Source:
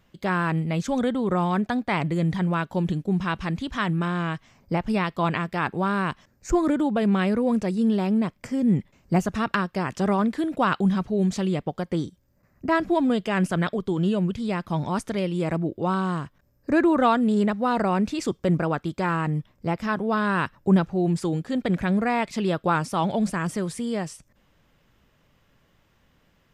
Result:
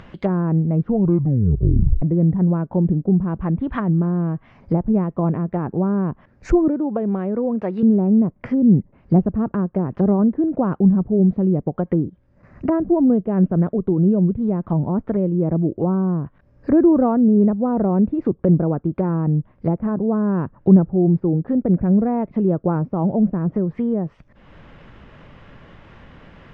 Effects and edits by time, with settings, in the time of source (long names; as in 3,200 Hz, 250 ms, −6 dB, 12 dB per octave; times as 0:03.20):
0:00.73: tape stop 1.29 s
0:06.68–0:07.83: RIAA equalisation recording
0:19.76–0:20.32: Gaussian smoothing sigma 2.2 samples
whole clip: treble cut that deepens with the level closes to 470 Hz, closed at −23 dBFS; low-pass filter 2,400 Hz 12 dB per octave; upward compression, threshold −39 dBFS; level +7.5 dB